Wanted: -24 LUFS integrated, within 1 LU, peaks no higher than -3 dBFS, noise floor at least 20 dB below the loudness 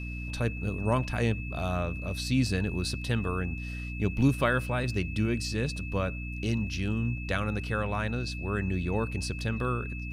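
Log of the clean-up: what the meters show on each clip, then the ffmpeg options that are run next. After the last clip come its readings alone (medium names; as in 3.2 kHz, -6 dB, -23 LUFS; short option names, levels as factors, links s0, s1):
hum 60 Hz; highest harmonic 300 Hz; hum level -34 dBFS; steady tone 2.6 kHz; tone level -41 dBFS; loudness -30.5 LUFS; peak level -11.5 dBFS; loudness target -24.0 LUFS
-> -af "bandreject=f=60:t=h:w=6,bandreject=f=120:t=h:w=6,bandreject=f=180:t=h:w=6,bandreject=f=240:t=h:w=6,bandreject=f=300:t=h:w=6"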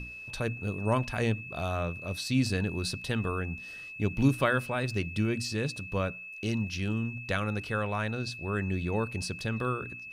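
hum not found; steady tone 2.6 kHz; tone level -41 dBFS
-> -af "bandreject=f=2600:w=30"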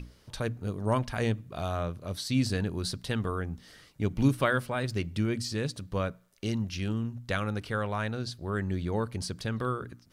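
steady tone not found; loudness -31.5 LUFS; peak level -11.5 dBFS; loudness target -24.0 LUFS
-> -af "volume=2.37"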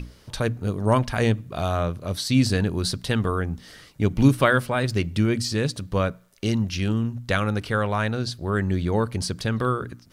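loudness -24.0 LUFS; peak level -4.0 dBFS; noise floor -52 dBFS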